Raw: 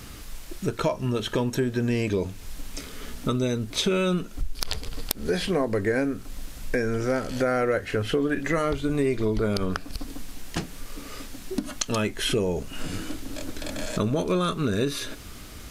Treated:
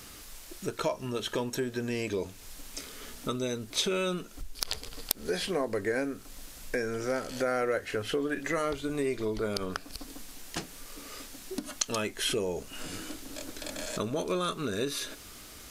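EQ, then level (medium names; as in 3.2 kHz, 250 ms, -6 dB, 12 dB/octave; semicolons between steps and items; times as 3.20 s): tone controls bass -8 dB, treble +4 dB; -4.5 dB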